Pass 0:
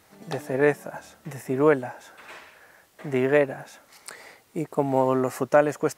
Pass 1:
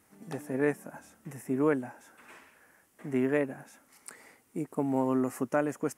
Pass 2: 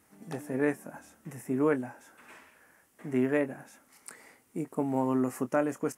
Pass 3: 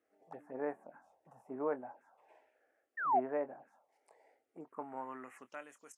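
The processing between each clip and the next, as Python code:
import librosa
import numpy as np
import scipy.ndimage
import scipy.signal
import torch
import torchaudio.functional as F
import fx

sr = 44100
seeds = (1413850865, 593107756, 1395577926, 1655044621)

y1 = fx.graphic_eq_15(x, sr, hz=(250, 630, 4000, 10000), db=(8, -4, -8, 6))
y1 = F.gain(torch.from_numpy(y1), -8.0).numpy()
y2 = fx.doubler(y1, sr, ms=24.0, db=-12.0)
y3 = fx.env_phaser(y2, sr, low_hz=150.0, high_hz=4800.0, full_db=-27.5)
y3 = fx.spec_paint(y3, sr, seeds[0], shape='fall', start_s=2.97, length_s=0.23, low_hz=630.0, high_hz=1900.0, level_db=-26.0)
y3 = fx.filter_sweep_bandpass(y3, sr, from_hz=760.0, to_hz=5400.0, start_s=4.5, end_s=5.97, q=2.1)
y3 = F.gain(torch.from_numpy(y3), -1.0).numpy()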